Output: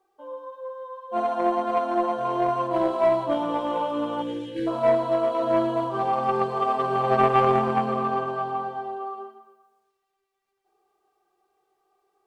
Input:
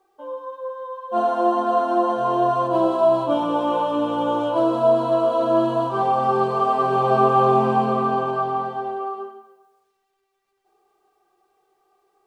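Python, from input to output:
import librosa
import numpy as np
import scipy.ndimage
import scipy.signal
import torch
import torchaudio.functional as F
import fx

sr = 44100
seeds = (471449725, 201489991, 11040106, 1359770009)

y = fx.cheby_harmonics(x, sr, harmonics=(3,), levels_db=(-16,), full_scale_db=-5.5)
y = fx.spec_erase(y, sr, start_s=4.22, length_s=0.45, low_hz=520.0, high_hz=1500.0)
y = fx.echo_feedback(y, sr, ms=117, feedback_pct=50, wet_db=-14.5)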